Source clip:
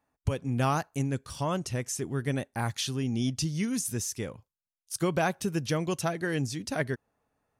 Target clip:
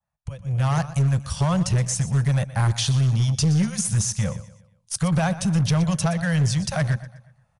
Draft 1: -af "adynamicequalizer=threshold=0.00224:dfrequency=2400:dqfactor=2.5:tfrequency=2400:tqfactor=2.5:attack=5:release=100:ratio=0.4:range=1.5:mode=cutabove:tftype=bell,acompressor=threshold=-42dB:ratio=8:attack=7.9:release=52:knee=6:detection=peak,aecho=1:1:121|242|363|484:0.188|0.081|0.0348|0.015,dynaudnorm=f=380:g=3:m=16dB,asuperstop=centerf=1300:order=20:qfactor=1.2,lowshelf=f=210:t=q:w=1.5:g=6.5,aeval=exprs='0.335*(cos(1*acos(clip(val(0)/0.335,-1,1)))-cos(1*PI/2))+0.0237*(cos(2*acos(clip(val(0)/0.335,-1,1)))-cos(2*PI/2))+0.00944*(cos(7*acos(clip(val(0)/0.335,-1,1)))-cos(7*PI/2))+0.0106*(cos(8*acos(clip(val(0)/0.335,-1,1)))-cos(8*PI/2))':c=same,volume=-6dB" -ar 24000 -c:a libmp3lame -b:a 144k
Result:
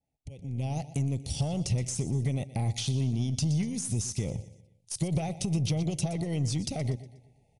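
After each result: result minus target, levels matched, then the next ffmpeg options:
compressor: peak gain reduction +10.5 dB; 1000 Hz band -4.0 dB
-af "adynamicequalizer=threshold=0.00224:dfrequency=2400:dqfactor=2.5:tfrequency=2400:tqfactor=2.5:attack=5:release=100:ratio=0.4:range=1.5:mode=cutabove:tftype=bell,acompressor=threshold=-30dB:ratio=8:attack=7.9:release=52:knee=6:detection=peak,aecho=1:1:121|242|363|484:0.188|0.081|0.0348|0.015,dynaudnorm=f=380:g=3:m=16dB,asuperstop=centerf=1300:order=20:qfactor=1.2,lowshelf=f=210:t=q:w=1.5:g=6.5,aeval=exprs='0.335*(cos(1*acos(clip(val(0)/0.335,-1,1)))-cos(1*PI/2))+0.0237*(cos(2*acos(clip(val(0)/0.335,-1,1)))-cos(2*PI/2))+0.00944*(cos(7*acos(clip(val(0)/0.335,-1,1)))-cos(7*PI/2))+0.0106*(cos(8*acos(clip(val(0)/0.335,-1,1)))-cos(8*PI/2))':c=same,volume=-6dB" -ar 24000 -c:a libmp3lame -b:a 144k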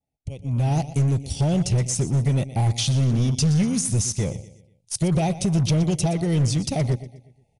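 1000 Hz band -2.0 dB
-af "adynamicequalizer=threshold=0.00224:dfrequency=2400:dqfactor=2.5:tfrequency=2400:tqfactor=2.5:attack=5:release=100:ratio=0.4:range=1.5:mode=cutabove:tftype=bell,acompressor=threshold=-30dB:ratio=8:attack=7.9:release=52:knee=6:detection=peak,aecho=1:1:121|242|363|484:0.188|0.081|0.0348|0.015,dynaudnorm=f=380:g=3:m=16dB,asuperstop=centerf=330:order=20:qfactor=1.2,lowshelf=f=210:t=q:w=1.5:g=6.5,aeval=exprs='0.335*(cos(1*acos(clip(val(0)/0.335,-1,1)))-cos(1*PI/2))+0.0237*(cos(2*acos(clip(val(0)/0.335,-1,1)))-cos(2*PI/2))+0.00944*(cos(7*acos(clip(val(0)/0.335,-1,1)))-cos(7*PI/2))+0.0106*(cos(8*acos(clip(val(0)/0.335,-1,1)))-cos(8*PI/2))':c=same,volume=-6dB" -ar 24000 -c:a libmp3lame -b:a 144k

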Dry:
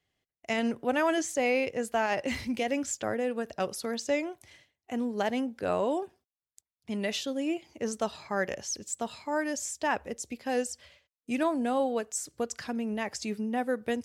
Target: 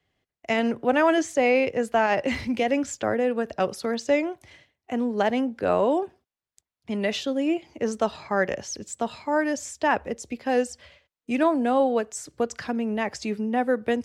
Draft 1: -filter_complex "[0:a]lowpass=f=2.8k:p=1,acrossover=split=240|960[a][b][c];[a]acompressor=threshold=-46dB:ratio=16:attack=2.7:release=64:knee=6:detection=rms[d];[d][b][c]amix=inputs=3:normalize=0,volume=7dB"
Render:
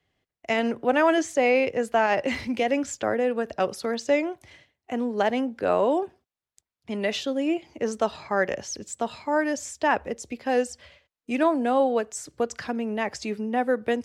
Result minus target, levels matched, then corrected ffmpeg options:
compressor: peak gain reduction +7.5 dB
-filter_complex "[0:a]lowpass=f=2.8k:p=1,acrossover=split=240|960[a][b][c];[a]acompressor=threshold=-38dB:ratio=16:attack=2.7:release=64:knee=6:detection=rms[d];[d][b][c]amix=inputs=3:normalize=0,volume=7dB"

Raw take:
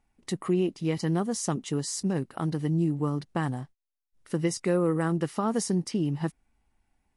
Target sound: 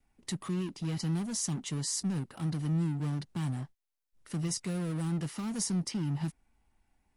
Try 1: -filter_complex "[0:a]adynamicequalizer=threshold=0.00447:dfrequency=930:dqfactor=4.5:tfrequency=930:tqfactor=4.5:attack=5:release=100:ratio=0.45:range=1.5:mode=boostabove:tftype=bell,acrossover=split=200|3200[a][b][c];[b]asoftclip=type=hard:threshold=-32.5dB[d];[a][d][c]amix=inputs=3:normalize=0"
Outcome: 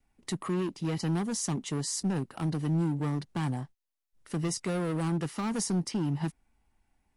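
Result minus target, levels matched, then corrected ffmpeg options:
hard clip: distortion -4 dB
-filter_complex "[0:a]adynamicequalizer=threshold=0.00447:dfrequency=930:dqfactor=4.5:tfrequency=930:tqfactor=4.5:attack=5:release=100:ratio=0.45:range=1.5:mode=boostabove:tftype=bell,acrossover=split=200|3200[a][b][c];[b]asoftclip=type=hard:threshold=-43.5dB[d];[a][d][c]amix=inputs=3:normalize=0"

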